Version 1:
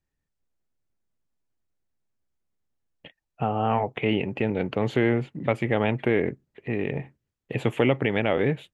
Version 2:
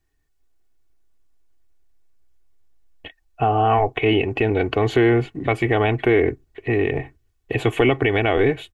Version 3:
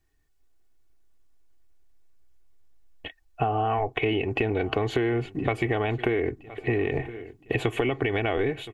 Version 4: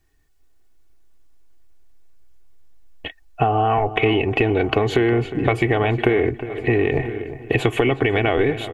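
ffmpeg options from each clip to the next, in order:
-filter_complex "[0:a]asubboost=boost=5:cutoff=69,aecho=1:1:2.7:0.65,asplit=2[a][b];[b]alimiter=limit=-17.5dB:level=0:latency=1:release=102,volume=3dB[c];[a][c]amix=inputs=2:normalize=0"
-af "aecho=1:1:1018|2036|3054:0.0668|0.0321|0.0154,acompressor=threshold=-21dB:ratio=10"
-filter_complex "[0:a]asplit=2[a][b];[b]adelay=359,lowpass=f=1.9k:p=1,volume=-12.5dB,asplit=2[c][d];[d]adelay=359,lowpass=f=1.9k:p=1,volume=0.35,asplit=2[e][f];[f]adelay=359,lowpass=f=1.9k:p=1,volume=0.35,asplit=2[g][h];[h]adelay=359,lowpass=f=1.9k:p=1,volume=0.35[i];[a][c][e][g][i]amix=inputs=5:normalize=0,volume=7dB"

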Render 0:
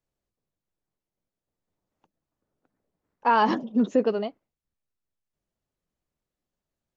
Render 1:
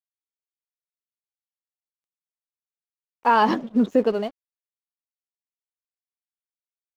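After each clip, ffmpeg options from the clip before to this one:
-af "aeval=exprs='sgn(val(0))*max(abs(val(0))-0.00355,0)':c=same,volume=3dB"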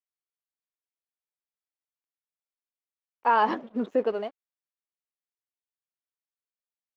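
-af "bass=f=250:g=-13,treble=f=4k:g=-13,volume=-3.5dB"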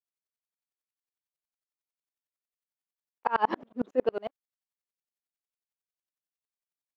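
-af "aeval=exprs='val(0)*pow(10,-36*if(lt(mod(-11*n/s,1),2*abs(-11)/1000),1-mod(-11*n/s,1)/(2*abs(-11)/1000),(mod(-11*n/s,1)-2*abs(-11)/1000)/(1-2*abs(-11)/1000))/20)':c=same,volume=4dB"

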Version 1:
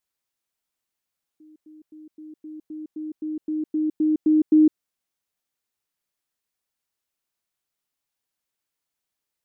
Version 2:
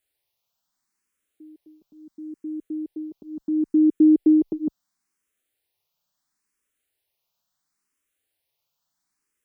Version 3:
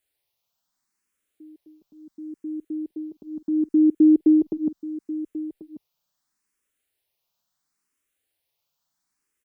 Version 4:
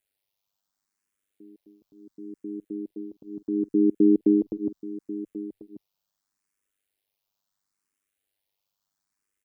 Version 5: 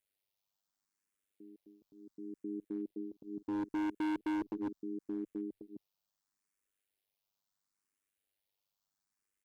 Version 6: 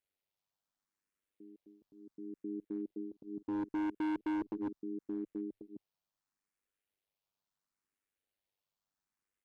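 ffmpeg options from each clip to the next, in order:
-filter_complex "[0:a]asplit=2[a][b];[b]afreqshift=0.73[c];[a][c]amix=inputs=2:normalize=1,volume=7.5dB"
-af "aecho=1:1:1088:0.178"
-af "tremolo=f=99:d=0.824"
-af "asoftclip=type=hard:threshold=-26.5dB,volume=-5.5dB"
-af "highshelf=f=3.7k:g=-9"

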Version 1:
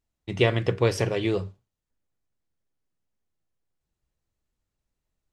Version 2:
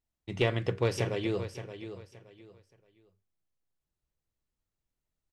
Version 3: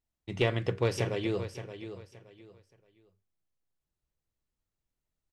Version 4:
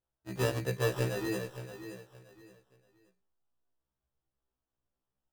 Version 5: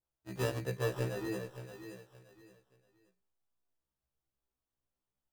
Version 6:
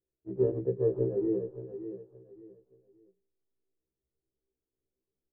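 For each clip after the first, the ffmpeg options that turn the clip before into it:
-af "aeval=exprs='clip(val(0),-1,0.141)':c=same,aecho=1:1:572|1144|1716:0.282|0.0733|0.0191,volume=-6dB"
-af anull
-af "acrusher=samples=20:mix=1:aa=0.000001,afftfilt=real='re*1.73*eq(mod(b,3),0)':imag='im*1.73*eq(mod(b,3),0)':win_size=2048:overlap=0.75"
-af "adynamicequalizer=threshold=0.00355:dfrequency=1800:dqfactor=0.7:tfrequency=1800:tqfactor=0.7:attack=5:release=100:ratio=0.375:range=2:mode=cutabove:tftype=highshelf,volume=-3.5dB"
-af "lowpass=f=400:t=q:w=4.9"

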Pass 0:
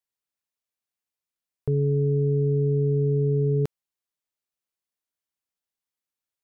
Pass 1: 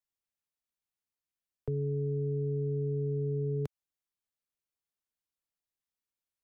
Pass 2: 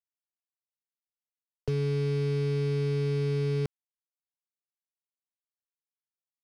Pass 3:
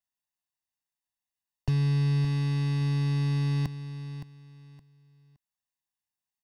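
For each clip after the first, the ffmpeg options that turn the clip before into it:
-filter_complex "[0:a]lowshelf=f=130:g=8,acrossover=split=140|300[a][b][c];[a]acompressor=threshold=-33dB:ratio=4[d];[b]acompressor=threshold=-36dB:ratio=4[e];[c]acompressor=threshold=-31dB:ratio=4[f];[d][e][f]amix=inputs=3:normalize=0,volume=-5.5dB"
-af "acrusher=bits=6:mix=0:aa=0.5,volume=4dB"
-af "aecho=1:1:1.1:0.98,aecho=1:1:567|1134|1701:0.266|0.0665|0.0166"

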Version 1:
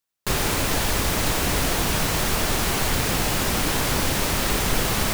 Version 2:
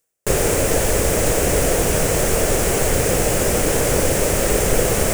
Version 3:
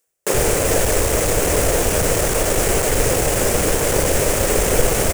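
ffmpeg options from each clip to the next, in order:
-af "equalizer=f=250:t=o:w=1:g=-4,equalizer=f=500:t=o:w=1:g=11,equalizer=f=1k:t=o:w=1:g=-8,equalizer=f=4k:t=o:w=1:g=-11,equalizer=f=8k:t=o:w=1:g=7,equalizer=f=16k:t=o:w=1:g=-4,areverse,acompressor=mode=upward:threshold=-23dB:ratio=2.5,areverse,volume=4.5dB"
-filter_complex "[0:a]aeval=exprs='clip(val(0),-1,0.126)':c=same,acrossover=split=190[a][b];[a]adelay=70[c];[c][b]amix=inputs=2:normalize=0,volume=2dB"

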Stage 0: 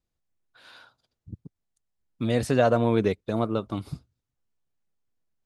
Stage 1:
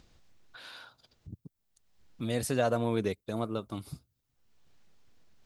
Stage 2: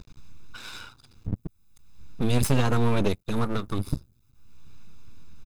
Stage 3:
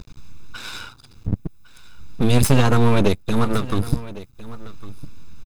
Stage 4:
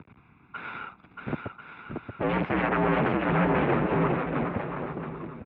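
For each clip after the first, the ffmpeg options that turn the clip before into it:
-filter_complex "[0:a]aemphasis=mode=production:type=50fm,acrossover=split=5600[a][b];[a]acompressor=mode=upward:threshold=-32dB:ratio=2.5[c];[c][b]amix=inputs=2:normalize=0,volume=-7dB"
-af "lowshelf=f=210:g=8.5,aecho=1:1:0.8:0.87,aeval=exprs='max(val(0),0)':c=same,volume=8dB"
-af "aecho=1:1:1106:0.133,volume=7dB"
-af "aecho=1:1:630|1040|1306|1479|1591:0.631|0.398|0.251|0.158|0.1,aeval=exprs='0.158*(abs(mod(val(0)/0.158+3,4)-2)-1)':c=same,highpass=f=190:t=q:w=0.5412,highpass=f=190:t=q:w=1.307,lowpass=f=2.5k:t=q:w=0.5176,lowpass=f=2.5k:t=q:w=0.7071,lowpass=f=2.5k:t=q:w=1.932,afreqshift=-61"

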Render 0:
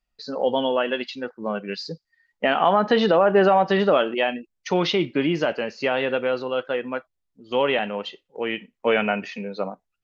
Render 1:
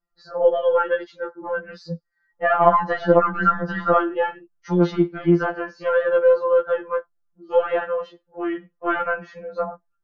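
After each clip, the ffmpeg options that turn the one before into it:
-af "highshelf=f=1.9k:t=q:w=3:g=-9.5,aeval=exprs='0.708*(cos(1*acos(clip(val(0)/0.708,-1,1)))-cos(1*PI/2))+0.0501*(cos(2*acos(clip(val(0)/0.708,-1,1)))-cos(2*PI/2))':c=same,afftfilt=real='re*2.83*eq(mod(b,8),0)':imag='im*2.83*eq(mod(b,8),0)':win_size=2048:overlap=0.75,volume=2.5dB"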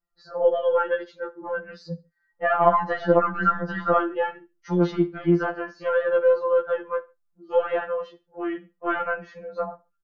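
-af "aecho=1:1:69|138:0.0794|0.023,volume=-3dB"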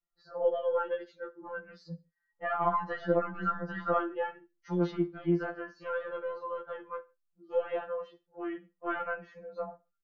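-af "flanger=delay=5.7:depth=1.1:regen=-44:speed=0.23:shape=sinusoidal,volume=-5.5dB"

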